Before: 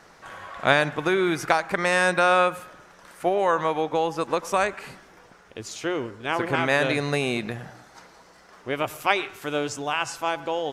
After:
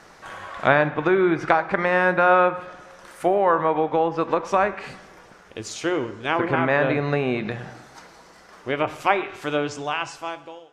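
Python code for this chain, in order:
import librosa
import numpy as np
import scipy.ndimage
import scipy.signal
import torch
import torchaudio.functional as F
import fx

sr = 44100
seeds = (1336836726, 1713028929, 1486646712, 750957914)

y = fx.fade_out_tail(x, sr, length_s=1.13)
y = fx.env_lowpass_down(y, sr, base_hz=1800.0, full_db=-20.0)
y = fx.rev_double_slope(y, sr, seeds[0], early_s=0.55, late_s=2.5, knee_db=-18, drr_db=12.0)
y = y * 10.0 ** (3.0 / 20.0)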